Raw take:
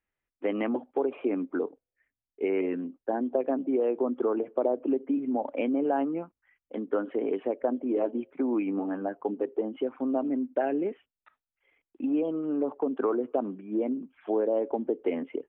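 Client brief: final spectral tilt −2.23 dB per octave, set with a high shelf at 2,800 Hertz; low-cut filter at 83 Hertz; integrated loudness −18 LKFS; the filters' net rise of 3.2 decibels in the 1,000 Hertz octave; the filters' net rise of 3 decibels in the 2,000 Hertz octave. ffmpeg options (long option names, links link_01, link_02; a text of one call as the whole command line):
ffmpeg -i in.wav -af "highpass=83,equalizer=frequency=1000:width_type=o:gain=4.5,equalizer=frequency=2000:width_type=o:gain=4.5,highshelf=frequency=2800:gain=-5.5,volume=11dB" out.wav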